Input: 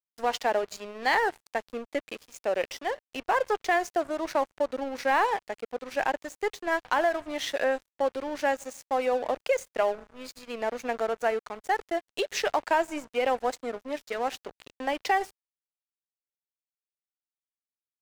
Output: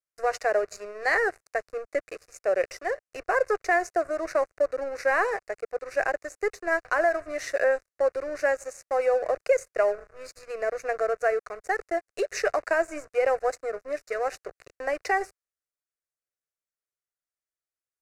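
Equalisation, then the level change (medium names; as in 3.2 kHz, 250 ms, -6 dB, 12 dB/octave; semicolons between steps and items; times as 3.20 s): low-pass 9.4 kHz 12 dB/octave; peaking EQ 840 Hz +3.5 dB 0.52 oct; static phaser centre 890 Hz, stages 6; +3.5 dB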